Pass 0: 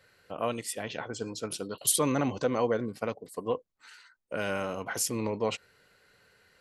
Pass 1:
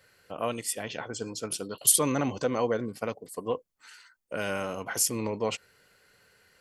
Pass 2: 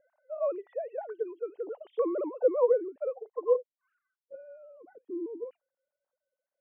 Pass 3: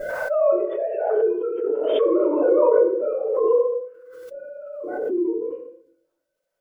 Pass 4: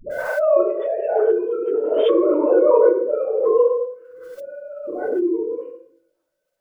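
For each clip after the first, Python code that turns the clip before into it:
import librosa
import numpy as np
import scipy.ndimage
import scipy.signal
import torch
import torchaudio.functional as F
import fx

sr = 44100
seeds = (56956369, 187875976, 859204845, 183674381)

y1 = fx.high_shelf(x, sr, hz=5300.0, db=6.5)
y1 = fx.notch(y1, sr, hz=3900.0, q=15.0)
y2 = fx.sine_speech(y1, sr)
y2 = fx.filter_sweep_lowpass(y2, sr, from_hz=720.0, to_hz=270.0, start_s=3.41, end_s=4.4, q=1.9)
y2 = y2 * librosa.db_to_amplitude(-4.0)
y3 = fx.room_shoebox(y2, sr, seeds[0], volume_m3=110.0, walls='mixed', distance_m=2.8)
y3 = fx.pre_swell(y3, sr, db_per_s=31.0)
y3 = y3 * librosa.db_to_amplitude(-1.5)
y4 = fx.dispersion(y3, sr, late='highs', ms=106.0, hz=450.0)
y4 = y4 * librosa.db_to_amplitude(2.5)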